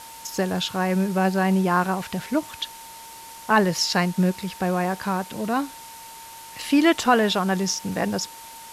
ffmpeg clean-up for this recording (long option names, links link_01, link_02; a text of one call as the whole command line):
ffmpeg -i in.wav -af "adeclick=threshold=4,bandreject=frequency=910:width=30,afftdn=noise_reduction=27:noise_floor=-42" out.wav